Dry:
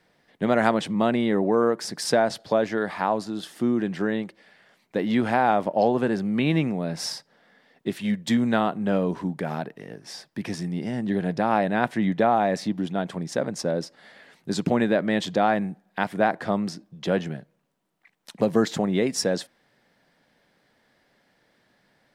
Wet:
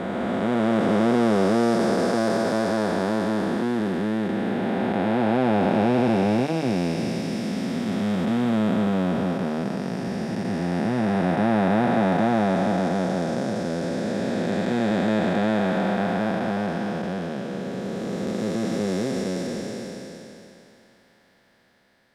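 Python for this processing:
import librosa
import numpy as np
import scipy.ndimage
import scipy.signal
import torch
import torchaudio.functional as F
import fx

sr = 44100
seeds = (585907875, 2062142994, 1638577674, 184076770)

y = fx.spec_blur(x, sr, span_ms=1490.0)
y = fx.notch_comb(y, sr, f0_hz=150.0)
y = y * librosa.db_to_amplitude(8.0)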